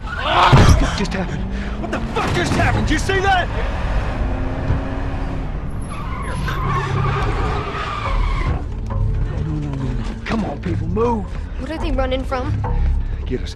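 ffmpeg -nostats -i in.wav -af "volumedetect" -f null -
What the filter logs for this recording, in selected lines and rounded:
mean_volume: -18.6 dB
max_volume: -3.1 dB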